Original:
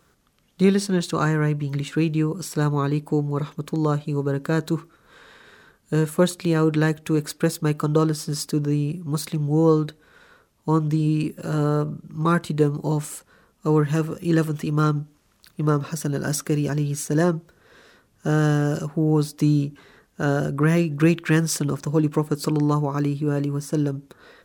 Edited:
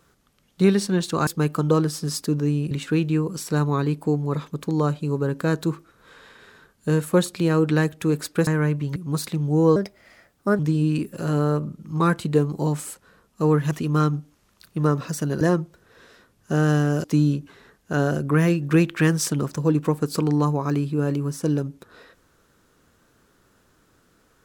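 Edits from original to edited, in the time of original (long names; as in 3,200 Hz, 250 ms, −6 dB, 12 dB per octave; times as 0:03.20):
0:01.27–0:01.76: swap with 0:07.52–0:08.96
0:09.76–0:10.84: play speed 130%
0:13.96–0:14.54: remove
0:16.24–0:17.16: remove
0:18.79–0:19.33: remove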